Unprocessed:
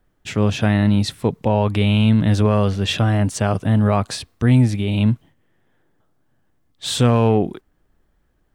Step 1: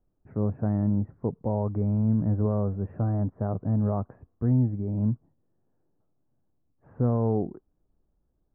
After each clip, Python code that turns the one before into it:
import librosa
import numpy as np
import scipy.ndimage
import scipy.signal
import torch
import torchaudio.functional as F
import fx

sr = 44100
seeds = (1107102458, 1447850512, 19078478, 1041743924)

y = scipy.ndimage.gaussian_filter1d(x, 8.6, mode='constant')
y = F.gain(torch.from_numpy(y), -8.5).numpy()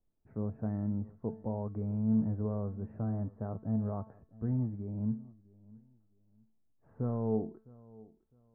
y = fx.comb_fb(x, sr, f0_hz=220.0, decay_s=0.41, harmonics='all', damping=0.0, mix_pct=70)
y = fx.echo_feedback(y, sr, ms=657, feedback_pct=26, wet_db=-22.0)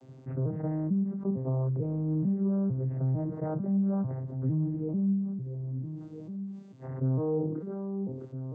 y = fx.vocoder_arp(x, sr, chord='minor triad', root=48, every_ms=448)
y = fx.env_flatten(y, sr, amount_pct=70)